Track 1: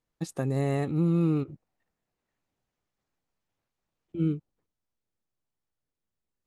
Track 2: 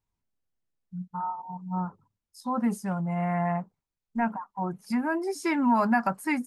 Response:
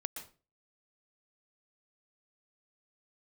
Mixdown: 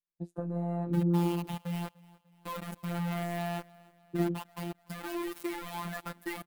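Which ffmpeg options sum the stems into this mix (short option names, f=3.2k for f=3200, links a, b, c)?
-filter_complex "[0:a]afwtdn=0.0126,acompressor=threshold=-32dB:ratio=5,flanger=delay=8.8:depth=6.7:regen=-56:speed=0.68:shape=sinusoidal,volume=1.5dB[a];[1:a]acompressor=threshold=-31dB:ratio=16,acrusher=bits=5:mix=0:aa=0.000001,volume=-8.5dB,asplit=2[b][c];[c]volume=-23dB,aecho=0:1:296|592|888|1184|1480|1776|2072:1|0.48|0.23|0.111|0.0531|0.0255|0.0122[d];[a][b][d]amix=inputs=3:normalize=0,equalizer=f=6k:t=o:w=1.1:g=-8.5,dynaudnorm=f=170:g=5:m=9dB,afftfilt=real='hypot(re,im)*cos(PI*b)':imag='0':win_size=1024:overlap=0.75"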